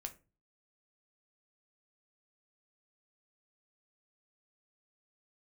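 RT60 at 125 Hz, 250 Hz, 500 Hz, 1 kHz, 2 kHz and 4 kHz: 0.50, 0.45, 0.35, 0.25, 0.25, 0.20 s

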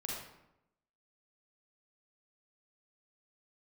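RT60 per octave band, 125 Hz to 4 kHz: 0.95, 0.95, 0.90, 0.85, 0.70, 0.55 s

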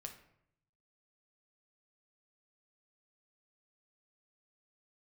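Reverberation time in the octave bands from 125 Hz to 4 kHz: 1.2, 0.90, 0.75, 0.70, 0.65, 0.45 s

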